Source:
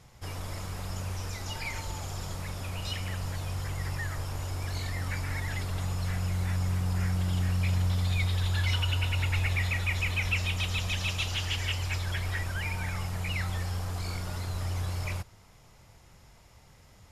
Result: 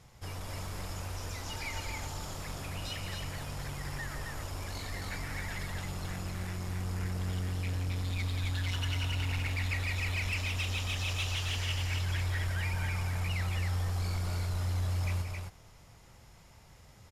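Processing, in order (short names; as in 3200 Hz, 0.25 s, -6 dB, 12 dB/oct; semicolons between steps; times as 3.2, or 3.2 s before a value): soft clip -27.5 dBFS, distortion -14 dB; loudspeakers at several distances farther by 61 m -10 dB, 92 m -4 dB; gain -2 dB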